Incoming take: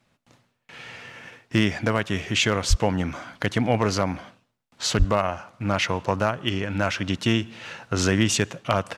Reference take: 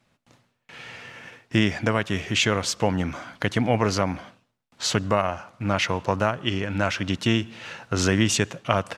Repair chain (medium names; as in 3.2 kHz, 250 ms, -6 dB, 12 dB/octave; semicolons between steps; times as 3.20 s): clip repair -8.5 dBFS; de-plosive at 2.69/4.98 s